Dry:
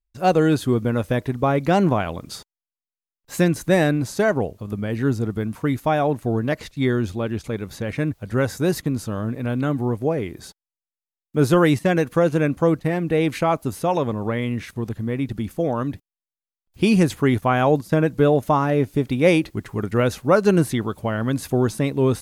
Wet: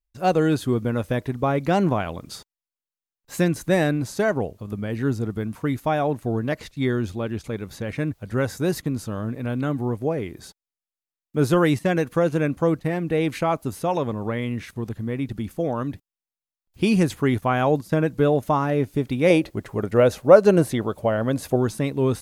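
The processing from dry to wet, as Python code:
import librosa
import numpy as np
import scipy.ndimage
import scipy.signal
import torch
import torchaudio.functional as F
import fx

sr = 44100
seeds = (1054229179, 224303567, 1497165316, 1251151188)

y = fx.peak_eq(x, sr, hz=580.0, db=9.5, octaves=0.85, at=(19.3, 21.56))
y = F.gain(torch.from_numpy(y), -2.5).numpy()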